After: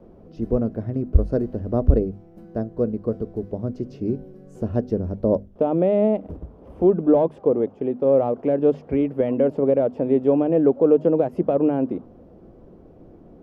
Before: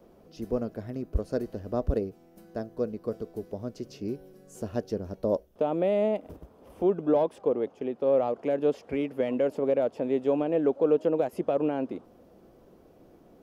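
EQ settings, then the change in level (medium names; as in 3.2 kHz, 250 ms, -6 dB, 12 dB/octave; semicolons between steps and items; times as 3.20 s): low-pass 1.2 kHz 6 dB/octave; bass shelf 280 Hz +10 dB; hum notches 50/100/150/200/250 Hz; +4.5 dB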